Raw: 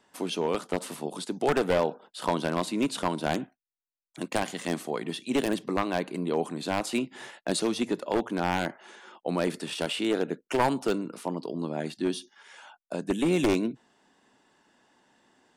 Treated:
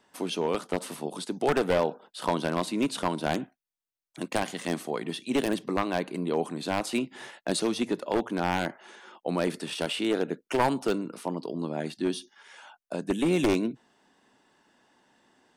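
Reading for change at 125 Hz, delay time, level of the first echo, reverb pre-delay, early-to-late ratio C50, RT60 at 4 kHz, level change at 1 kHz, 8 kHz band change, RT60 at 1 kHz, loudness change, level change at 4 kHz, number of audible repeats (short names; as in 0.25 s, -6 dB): 0.0 dB, none, none, none, none, none, 0.0 dB, -0.5 dB, none, 0.0 dB, 0.0 dB, none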